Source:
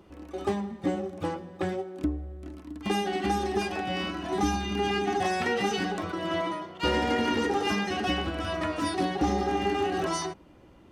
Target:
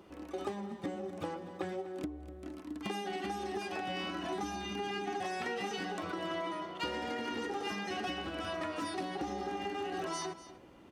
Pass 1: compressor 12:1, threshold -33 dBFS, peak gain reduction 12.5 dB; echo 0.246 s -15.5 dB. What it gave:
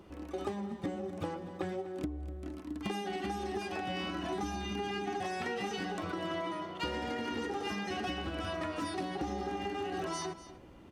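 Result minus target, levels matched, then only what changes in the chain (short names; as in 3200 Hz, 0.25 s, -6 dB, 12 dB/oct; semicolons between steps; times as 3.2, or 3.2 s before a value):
125 Hz band +4.5 dB
add after compressor: low shelf 120 Hz -12 dB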